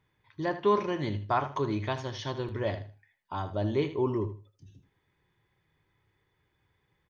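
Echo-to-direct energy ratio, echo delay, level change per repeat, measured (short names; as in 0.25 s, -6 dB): -12.0 dB, 78 ms, -13.0 dB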